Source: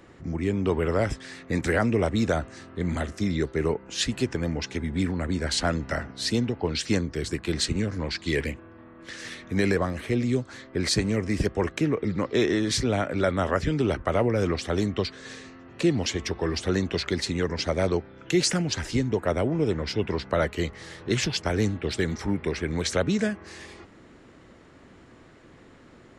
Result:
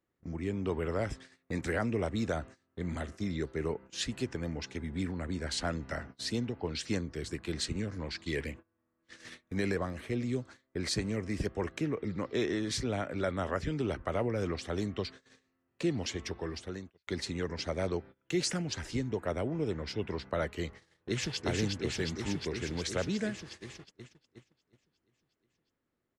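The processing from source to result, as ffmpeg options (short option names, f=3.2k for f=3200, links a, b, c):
-filter_complex "[0:a]asplit=2[a][b];[b]afade=t=in:st=20.78:d=0.01,afade=t=out:st=21.45:d=0.01,aecho=0:1:360|720|1080|1440|1800|2160|2520|2880|3240|3600|3960|4320:0.794328|0.635463|0.50837|0.406696|0.325357|0.260285|0.208228|0.166583|0.133266|0.106613|0.0852903|0.0682323[c];[a][c]amix=inputs=2:normalize=0,asplit=2[d][e];[d]atrim=end=17.07,asetpts=PTS-STARTPTS,afade=t=out:st=16.29:d=0.78[f];[e]atrim=start=17.07,asetpts=PTS-STARTPTS,afade=t=in:d=0.004:c=hsin[g];[f][g]concat=n=2:v=0:a=1,agate=range=-24dB:threshold=-38dB:ratio=16:detection=peak,volume=-8.5dB"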